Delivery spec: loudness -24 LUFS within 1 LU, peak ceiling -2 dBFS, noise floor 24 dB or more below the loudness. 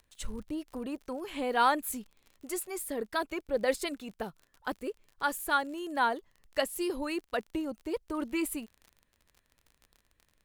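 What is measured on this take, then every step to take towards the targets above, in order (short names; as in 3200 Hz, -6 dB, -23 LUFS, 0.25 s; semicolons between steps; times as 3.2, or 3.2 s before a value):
ticks 39/s; loudness -33.5 LUFS; peak -12.5 dBFS; loudness target -24.0 LUFS
-> de-click; gain +9.5 dB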